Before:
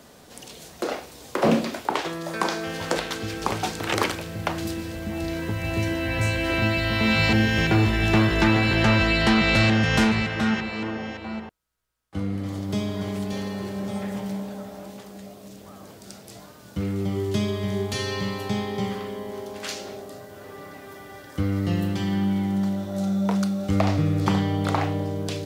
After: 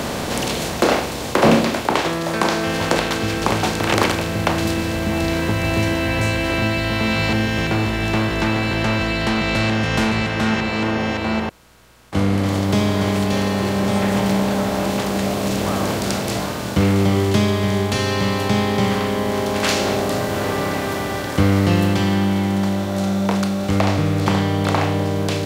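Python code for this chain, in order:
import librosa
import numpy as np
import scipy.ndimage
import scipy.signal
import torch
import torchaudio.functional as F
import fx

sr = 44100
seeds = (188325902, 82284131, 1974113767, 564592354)

y = fx.bin_compress(x, sr, power=0.6)
y = fx.rider(y, sr, range_db=10, speed_s=2.0)
y = F.gain(torch.from_numpy(y), 1.5).numpy()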